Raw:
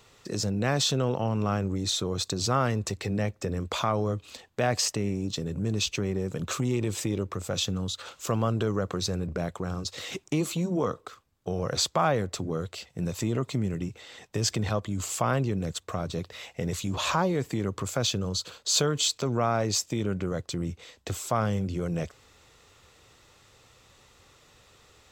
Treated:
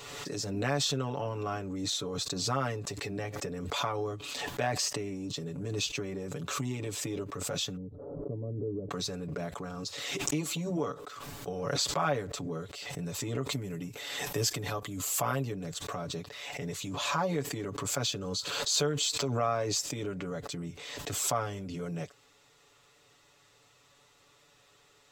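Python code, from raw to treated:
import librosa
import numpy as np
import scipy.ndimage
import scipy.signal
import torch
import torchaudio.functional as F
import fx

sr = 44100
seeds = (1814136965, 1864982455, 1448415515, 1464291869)

y = fx.cheby2_lowpass(x, sr, hz=2600.0, order=4, stop_db=80, at=(7.75, 8.9), fade=0.02)
y = fx.peak_eq(y, sr, hz=13000.0, db=14.5, octaves=0.55, at=(13.52, 15.52))
y = fx.low_shelf(y, sr, hz=130.0, db=-9.5)
y = y + 0.87 * np.pad(y, (int(7.0 * sr / 1000.0), 0))[:len(y)]
y = fx.pre_swell(y, sr, db_per_s=32.0)
y = y * 10.0 ** (-7.0 / 20.0)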